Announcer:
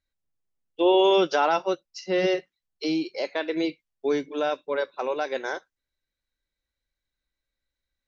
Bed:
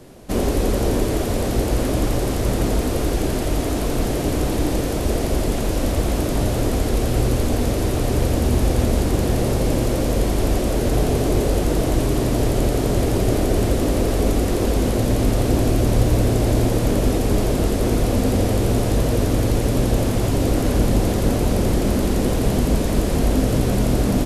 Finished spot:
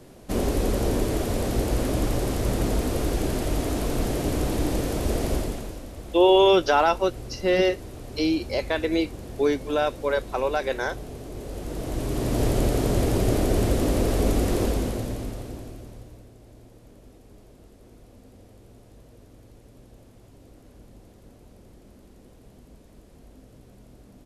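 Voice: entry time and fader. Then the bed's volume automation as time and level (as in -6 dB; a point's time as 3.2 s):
5.35 s, +2.5 dB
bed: 5.34 s -4.5 dB
5.86 s -19 dB
11.31 s -19 dB
12.44 s -3.5 dB
14.61 s -3.5 dB
16.31 s -32 dB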